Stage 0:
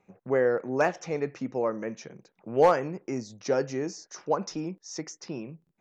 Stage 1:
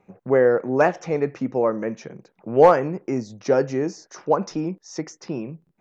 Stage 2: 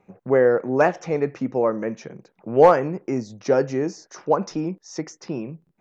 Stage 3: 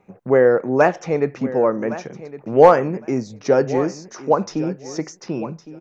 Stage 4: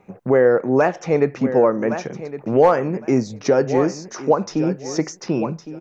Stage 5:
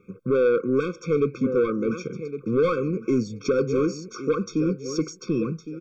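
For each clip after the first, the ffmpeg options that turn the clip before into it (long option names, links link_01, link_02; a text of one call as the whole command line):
ffmpeg -i in.wav -af "highshelf=frequency=2700:gain=-9,volume=7.5dB" out.wav
ffmpeg -i in.wav -af anull out.wav
ffmpeg -i in.wav -af "aecho=1:1:1111|2222:0.168|0.0269,volume=3dB" out.wav
ffmpeg -i in.wav -af "alimiter=limit=-10dB:level=0:latency=1:release=434,volume=4.5dB" out.wav
ffmpeg -i in.wav -af "asoftclip=type=tanh:threshold=-13dB,afftfilt=real='re*eq(mod(floor(b*sr/1024/530),2),0)':imag='im*eq(mod(floor(b*sr/1024/530),2),0)':win_size=1024:overlap=0.75,volume=-1.5dB" out.wav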